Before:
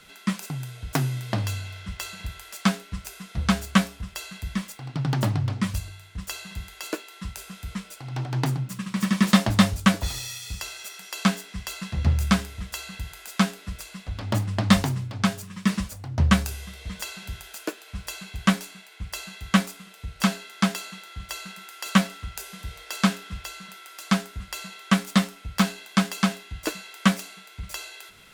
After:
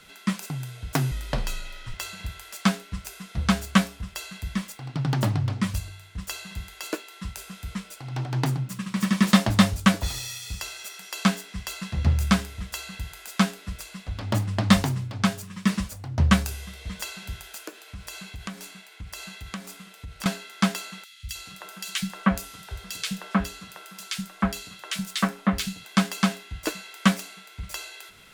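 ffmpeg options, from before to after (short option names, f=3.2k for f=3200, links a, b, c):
-filter_complex "[0:a]asettb=1/sr,asplit=3[a][b][c];[a]atrim=end=1.114[d];[b]atrim=start=1.11:end=1.94,asetpts=PTS-STARTPTS,afade=t=in:d=0.004:c=qsin,afade=t=out:st=0.826:d=0.004:c=qsin,afreqshift=-72[e];[c]atrim=start=1.936[f];[d][e]acrossfade=d=0.004:c1=hsin:c2=qsin[g];[g][f]acrossfade=d=0.004:c1=qsin:c2=hsin,asettb=1/sr,asplit=3[h][i][j];[h]atrim=end=17.644[k];[i]atrim=start=17.64:end=20.26,asetpts=PTS-STARTPTS,afade=t=in:d=0.004:c=qsin,afade=t=out:st=2.616:d=0.004:c=qsin,acompressor=threshold=-34dB:ratio=4:attack=3.2:release=140:knee=1:detection=peak[l];[j]atrim=start=20.256[m];[k][l]acrossfade=d=0.004:c1=hsin:c2=qsin[n];[n][m]acrossfade=d=0.004:c1=qsin:c2=hsin,asettb=1/sr,asplit=3[o][p][q];[o]atrim=end=21.044[r];[p]atrim=start=21.04:end=25.85,asetpts=PTS-STARTPTS,afade=t=in:d=0.004:c=qsin,afade=t=out:st=4.806:d=0.004:c=qsin,acrossover=split=150|2100[s][t][u];[s]adelay=70[v];[t]adelay=310[w];[v][w][u]amix=inputs=3:normalize=0,atrim=end_sample=212121[x];[q]atrim=start=25.846[y];[r][x]acrossfade=d=0.004:c1=hsin:c2=qsin[z];[z][y]acrossfade=d=0.004:c1=qsin:c2=hsin"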